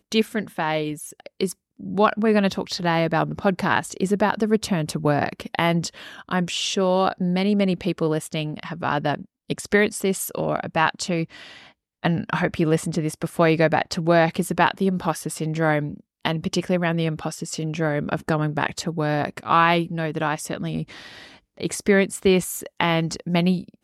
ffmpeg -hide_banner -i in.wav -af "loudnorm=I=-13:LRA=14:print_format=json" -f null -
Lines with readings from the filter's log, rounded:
"input_i" : "-22.9",
"input_tp" : "-4.7",
"input_lra" : "3.1",
"input_thresh" : "-33.2",